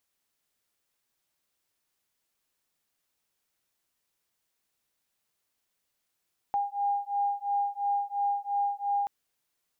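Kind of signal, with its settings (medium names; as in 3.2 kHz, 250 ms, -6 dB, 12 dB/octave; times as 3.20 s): beating tones 807 Hz, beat 2.9 Hz, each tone -29.5 dBFS 2.53 s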